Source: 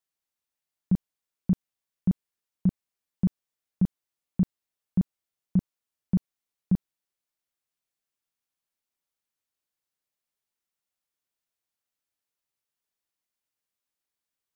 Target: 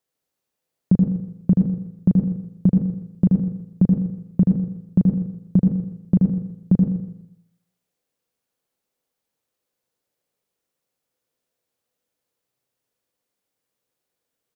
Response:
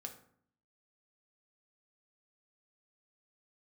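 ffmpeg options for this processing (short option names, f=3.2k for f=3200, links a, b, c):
-filter_complex "[0:a]equalizer=f=125:t=o:w=1:g=6,equalizer=f=250:t=o:w=1:g=4,equalizer=f=500:t=o:w=1:g=10,acompressor=threshold=-15dB:ratio=6,aecho=1:1:124|248|372|496:0.335|0.117|0.041|0.0144,asplit=2[a][b];[1:a]atrim=start_sample=2205,adelay=78[c];[b][c]afir=irnorm=-1:irlink=0,volume=1dB[d];[a][d]amix=inputs=2:normalize=0,volume=3.5dB"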